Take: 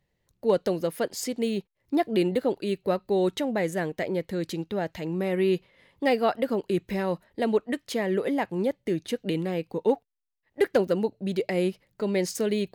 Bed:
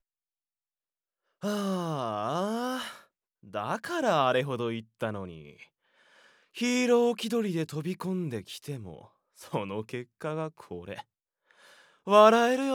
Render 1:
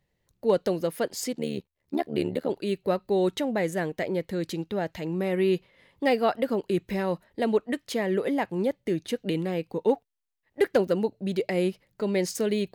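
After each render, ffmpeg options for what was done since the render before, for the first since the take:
-filter_complex "[0:a]asettb=1/sr,asplit=3[s0][s1][s2];[s0]atrim=end=1.334[s3];[s1]atrim=start=1.33:end=2.5,asetpts=PTS-STARTPTS,afade=t=in:d=0.004:c=qsin,afade=t=out:st=1.166:d=0.004:c=qsin,tremolo=f=74:d=0.889[s4];[s2]atrim=start=2.496[s5];[s3][s4]acrossfade=d=0.004:c1=hsin:c2=qsin[s6];[s6][s5]acrossfade=d=0.004:c1=qsin:c2=hsin"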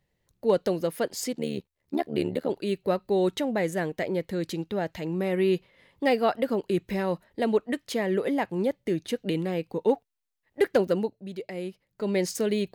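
-filter_complex "[0:a]asplit=3[s0][s1][s2];[s0]atrim=end=11.17,asetpts=PTS-STARTPTS,afade=t=out:st=10.98:d=0.19:silence=0.354813[s3];[s1]atrim=start=11.17:end=11.9,asetpts=PTS-STARTPTS,volume=0.355[s4];[s2]atrim=start=11.9,asetpts=PTS-STARTPTS,afade=t=in:d=0.19:silence=0.354813[s5];[s3][s4][s5]concat=n=3:v=0:a=1"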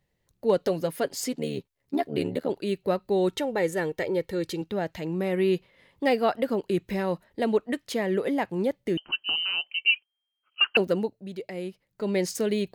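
-filter_complex "[0:a]asettb=1/sr,asplit=3[s0][s1][s2];[s0]atrim=end=0.594[s3];[s1]atrim=start=0.59:end=2.39,asetpts=PTS-STARTPTS,afade=t=in:d=0.004:c=qsin,afade=t=out:st=1.796:d=0.004:c=qsin,aecho=1:1:7.2:0.43,atrim=end_sample=79380[s4];[s2]atrim=start=2.386[s5];[s3][s4]acrossfade=d=0.004:c1=hsin:c2=qsin[s6];[s6][s5]acrossfade=d=0.004:c1=qsin:c2=hsin,asettb=1/sr,asplit=3[s7][s8][s9];[s7]atrim=end=3.324[s10];[s8]atrim=start=3.32:end=4.62,asetpts=PTS-STARTPTS,afade=t=in:d=0.004:c=qsin,afade=t=out:st=1.296:d=0.004:c=qsin,aecho=1:1:2.2:0.54,atrim=end_sample=57330[s11];[s9]atrim=start=4.616[s12];[s10][s11]acrossfade=d=0.004:c1=hsin:c2=qsin[s13];[s13][s12]acrossfade=d=0.004:c1=qsin:c2=hsin,asettb=1/sr,asplit=3[s14][s15][s16];[s14]atrim=end=8.974[s17];[s15]atrim=start=8.97:end=10.77,asetpts=PTS-STARTPTS,afade=t=in:d=0.004:c=qsin,afade=t=out:st=1.796:d=0.004:c=qsin,lowpass=f=2700:t=q:w=0.5098,lowpass=f=2700:t=q:w=0.6013,lowpass=f=2700:t=q:w=0.9,lowpass=f=2700:t=q:w=2.563,afreqshift=-3200[s18];[s16]atrim=start=10.766[s19];[s17][s18]acrossfade=d=0.004:c1=hsin:c2=qsin[s20];[s20][s19]acrossfade=d=0.004:c1=qsin:c2=hsin"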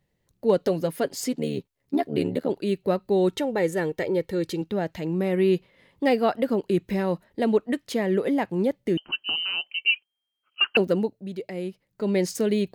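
-af "equalizer=f=220:t=o:w=2.1:g=4"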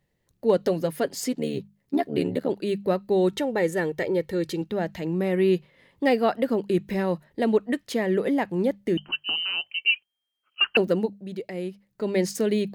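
-af "equalizer=f=1800:w=7.8:g=3,bandreject=f=50:t=h:w=6,bandreject=f=100:t=h:w=6,bandreject=f=150:t=h:w=6,bandreject=f=200:t=h:w=6"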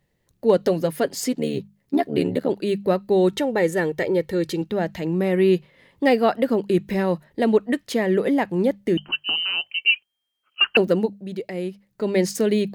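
-af "volume=1.5"

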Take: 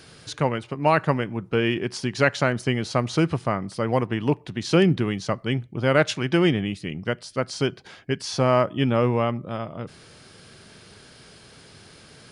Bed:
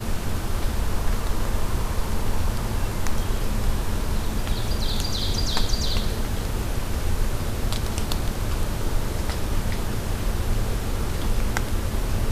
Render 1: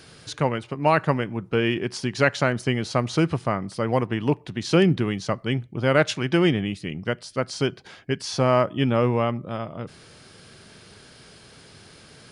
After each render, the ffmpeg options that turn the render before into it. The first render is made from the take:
-af anull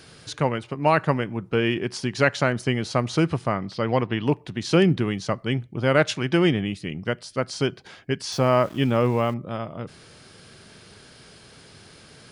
-filter_complex "[0:a]asettb=1/sr,asplit=3[s0][s1][s2];[s0]atrim=end=3.554[s3];[s1]atrim=start=3.55:end=4.27,asetpts=PTS-STARTPTS,afade=t=in:d=0.004:c=qsin,afade=t=out:st=0.716:d=0.004:c=qsin,lowpass=f=4100:t=q:w=1.9[s4];[s2]atrim=start=4.266[s5];[s3][s4]acrossfade=d=0.004:c1=hsin:c2=qsin[s6];[s6][s5]acrossfade=d=0.004:c1=qsin:c2=hsin,asettb=1/sr,asplit=3[s7][s8][s9];[s7]atrim=end=8.324[s10];[s8]atrim=start=8.32:end=9.34,asetpts=PTS-STARTPTS,afade=t=in:d=0.004:c=qsin,afade=t=out:st=1.016:d=0.004:c=qsin,aeval=exprs='val(0)*gte(abs(val(0)),0.01)':c=same[s11];[s9]atrim=start=9.336[s12];[s10][s11]acrossfade=d=0.004:c1=hsin:c2=qsin[s13];[s13][s12]acrossfade=d=0.004:c1=qsin:c2=hsin"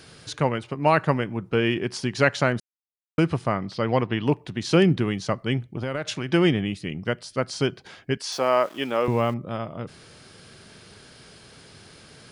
-filter_complex "[0:a]asettb=1/sr,asplit=3[s0][s1][s2];[s0]atrim=end=5.704[s3];[s1]atrim=start=5.7:end=6.29,asetpts=PTS-STARTPTS,afade=t=in:d=0.004:c=qsin,afade=t=out:st=0.586:d=0.004:c=qsin,acompressor=threshold=0.0631:ratio=12:attack=3.2:release=140:knee=1:detection=peak[s4];[s2]atrim=start=6.286[s5];[s3][s4]acrossfade=d=0.004:c1=hsin:c2=qsin[s6];[s6][s5]acrossfade=d=0.004:c1=qsin:c2=hsin,asettb=1/sr,asplit=3[s7][s8][s9];[s7]atrim=end=8.174[s10];[s8]atrim=start=8.17:end=9.08,asetpts=PTS-STARTPTS,afade=t=in:d=0.004:c=qsin,afade=t=out:st=0.906:d=0.004:c=qsin,highpass=400[s11];[s9]atrim=start=9.076[s12];[s10][s11]acrossfade=d=0.004:c1=hsin:c2=qsin[s13];[s13][s12]acrossfade=d=0.004:c1=qsin:c2=hsin,asplit=3[s14][s15][s16];[s14]atrim=end=2.6,asetpts=PTS-STARTPTS,afade=t=out:st=2.596:d=0.004:c=hsin[s17];[s15]atrim=start=2.6:end=3.18,asetpts=PTS-STARTPTS,volume=0[s18];[s16]atrim=start=3.18,asetpts=PTS-STARTPTS,afade=t=in:d=0.004:c=hsin[s19];[s17][s18][s19]concat=n=3:v=0:a=1"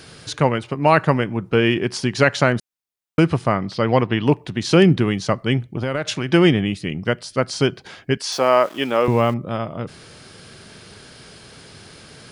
-af "volume=1.88,alimiter=limit=0.708:level=0:latency=1"

